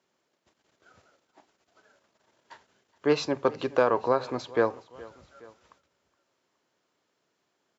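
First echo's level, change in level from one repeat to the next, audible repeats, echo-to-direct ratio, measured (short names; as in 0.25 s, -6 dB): -21.0 dB, -5.0 dB, 2, -20.0 dB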